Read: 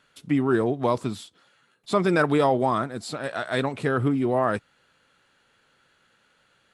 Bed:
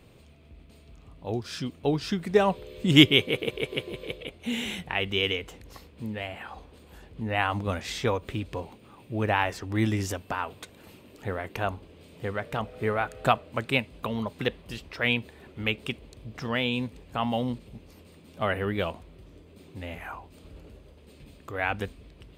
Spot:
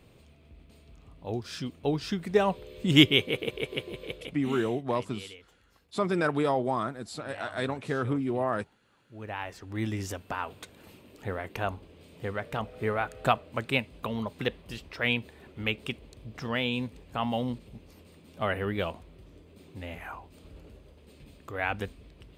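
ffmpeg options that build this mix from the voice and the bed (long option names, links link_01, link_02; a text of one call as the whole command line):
ffmpeg -i stem1.wav -i stem2.wav -filter_complex "[0:a]adelay=4050,volume=-6dB[link_01];[1:a]volume=14.5dB,afade=type=out:start_time=4.23:duration=0.51:silence=0.149624,afade=type=in:start_time=9.05:duration=1.45:silence=0.141254[link_02];[link_01][link_02]amix=inputs=2:normalize=0" out.wav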